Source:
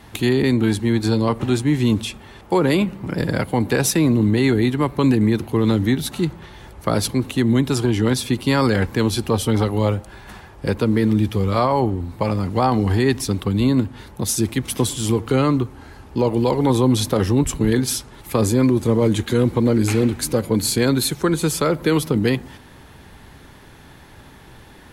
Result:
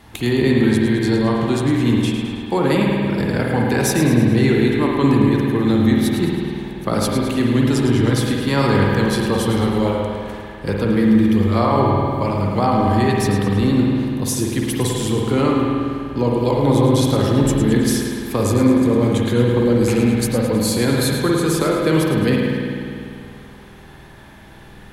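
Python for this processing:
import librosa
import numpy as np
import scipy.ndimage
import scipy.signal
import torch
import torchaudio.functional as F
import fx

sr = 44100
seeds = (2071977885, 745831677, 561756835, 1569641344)

y = fx.echo_split(x, sr, split_hz=470.0, low_ms=185, high_ms=107, feedback_pct=52, wet_db=-9)
y = fx.rev_spring(y, sr, rt60_s=2.3, pass_ms=(50,), chirp_ms=40, drr_db=-1.0)
y = F.gain(torch.from_numpy(y), -2.0).numpy()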